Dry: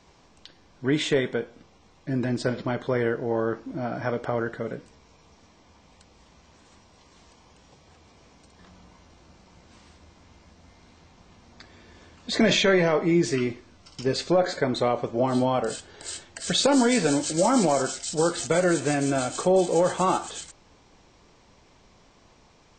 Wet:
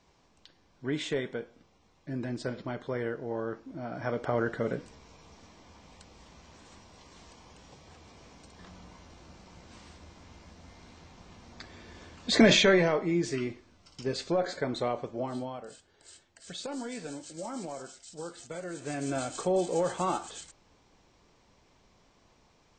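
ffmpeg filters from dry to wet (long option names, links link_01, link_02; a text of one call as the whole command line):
ffmpeg -i in.wav -af "volume=12dB,afade=type=in:start_time=3.86:duration=0.91:silence=0.316228,afade=type=out:start_time=12.37:duration=0.67:silence=0.375837,afade=type=out:start_time=14.91:duration=0.69:silence=0.298538,afade=type=in:start_time=18.72:duration=0.43:silence=0.298538" out.wav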